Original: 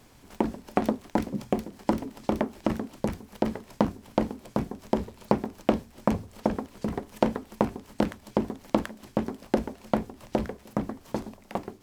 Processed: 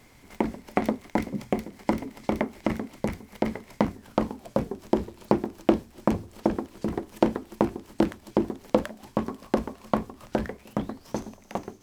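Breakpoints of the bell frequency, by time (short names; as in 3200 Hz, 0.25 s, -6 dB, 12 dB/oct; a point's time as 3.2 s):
bell +11 dB 0.2 oct
3.92 s 2100 Hz
4.8 s 340 Hz
8.55 s 340 Hz
9.2 s 1100 Hz
10.17 s 1100 Hz
11.17 s 6200 Hz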